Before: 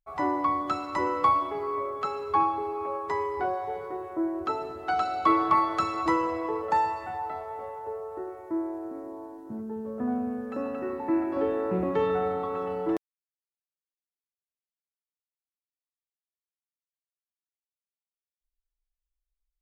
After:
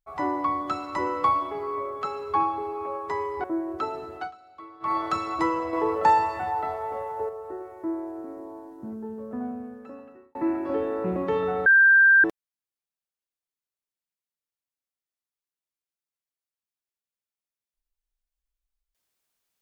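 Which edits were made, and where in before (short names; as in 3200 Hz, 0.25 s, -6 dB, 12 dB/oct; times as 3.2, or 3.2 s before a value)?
3.44–4.11 cut
4.82–5.64 dip -22.5 dB, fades 0.17 s
6.4–7.96 gain +5.5 dB
9.65–11.02 fade out
12.33–12.91 bleep 1580 Hz -12.5 dBFS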